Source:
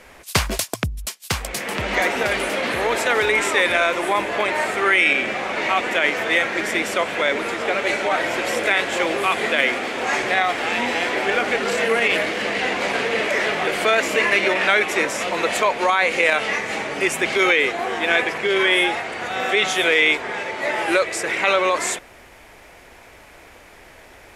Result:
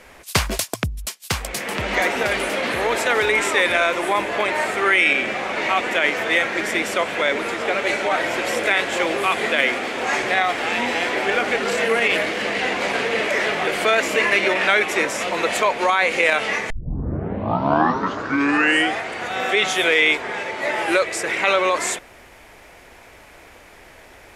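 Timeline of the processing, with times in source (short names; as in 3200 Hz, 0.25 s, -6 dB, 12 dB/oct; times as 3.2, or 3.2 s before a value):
16.7 tape start 2.39 s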